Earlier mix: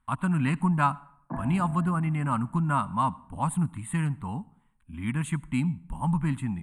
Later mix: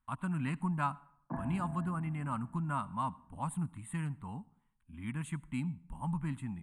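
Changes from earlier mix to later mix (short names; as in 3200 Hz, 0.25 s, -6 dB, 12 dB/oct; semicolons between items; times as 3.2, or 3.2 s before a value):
speech -9.5 dB; background -4.5 dB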